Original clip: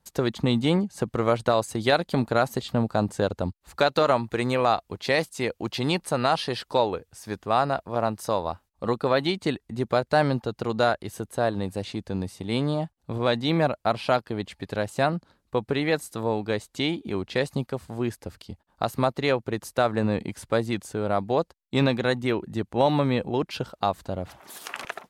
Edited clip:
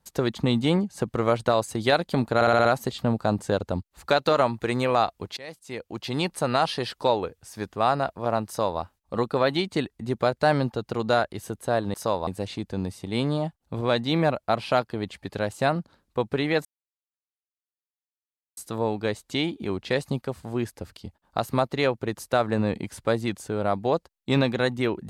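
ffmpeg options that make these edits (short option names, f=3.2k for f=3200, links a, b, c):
-filter_complex "[0:a]asplit=10[a][b][c][d][e][f][g][h][i][j];[a]atrim=end=2.412[k];[b]atrim=start=2.348:end=2.412[l];[c]atrim=start=2.348:end=2.412[m];[d]atrim=start=2.348:end=2.412[n];[e]atrim=start=2.348:end=2.412[o];[f]atrim=start=2.348:end=5.07,asetpts=PTS-STARTPTS,afade=t=out:st=2.718:d=0.004:c=hsin:silence=0.0630957[p];[g]atrim=start=5.07:end=11.642,asetpts=PTS-STARTPTS,afade=t=in:d=1.02:silence=0.0630957[q];[h]atrim=start=8.168:end=8.502[r];[i]atrim=start=11.638:end=16.02,asetpts=PTS-STARTPTS,afade=t=out:st=4.378:d=0.004:c=hsin,apad=pad_dur=1.92[s];[j]atrim=start=16.02,asetpts=PTS-STARTPTS,afade=t=in:d=0.004:c=hsin[t];[k][l]acrossfade=d=0.004:c1=hsin:c2=hsin[u];[u][m]acrossfade=d=0.004:c1=hsin:c2=hsin[v];[v][n]acrossfade=d=0.004:c1=hsin:c2=hsin[w];[w][o]acrossfade=d=0.004:c1=hsin:c2=hsin[x];[p][q]concat=n=2:v=0:a=1[y];[x][y]acrossfade=d=0.004:c1=hsin:c2=hsin[z];[z][r]acrossfade=d=0.004:c1=hsin:c2=hsin[aa];[s][t]concat=n=2:v=0:a=1[ab];[aa][ab]acrossfade=d=0.004:c1=hsin:c2=hsin"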